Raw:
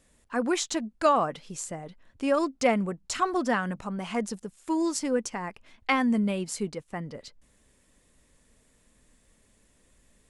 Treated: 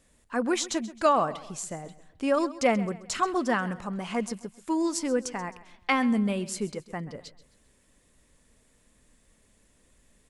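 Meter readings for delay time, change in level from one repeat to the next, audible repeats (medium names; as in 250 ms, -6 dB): 132 ms, -8.0 dB, 3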